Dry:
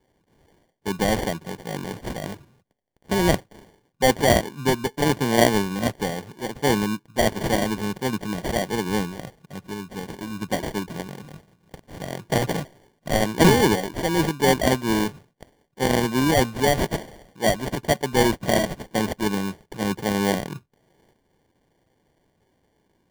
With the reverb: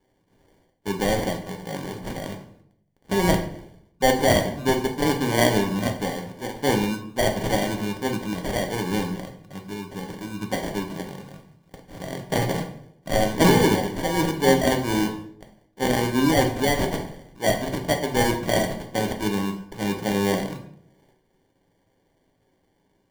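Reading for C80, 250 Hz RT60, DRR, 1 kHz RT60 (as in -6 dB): 13.0 dB, 0.85 s, 3.0 dB, 0.60 s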